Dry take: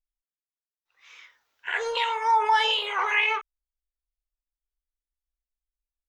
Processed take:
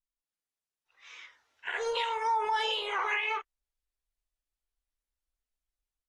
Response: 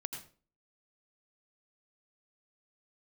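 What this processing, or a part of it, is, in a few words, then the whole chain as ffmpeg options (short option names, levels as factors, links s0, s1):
low-bitrate web radio: -filter_complex "[0:a]asettb=1/sr,asplit=3[s0][s1][s2];[s0]atrim=end=1.714[s3];[s1]atrim=start=1.71:end=2.93,asetpts=PTS-STARTPTS,afade=t=in:d=0.004:c=qsin,afade=t=out:st=1.216:d=0.004:c=qsin,equalizer=f=2000:t=o:w=2.9:g=-5.5[s4];[s2]atrim=start=2.926[s5];[s3][s4]acrossfade=d=0.004:c1=hsin:c2=qsin[s6];[s6][s5]acrossfade=d=0.004:c1=qsin:c2=hsin,dynaudnorm=f=170:g=3:m=2.51,alimiter=limit=0.2:level=0:latency=1:release=176,volume=0.398" -ar 44100 -c:a aac -b:a 32k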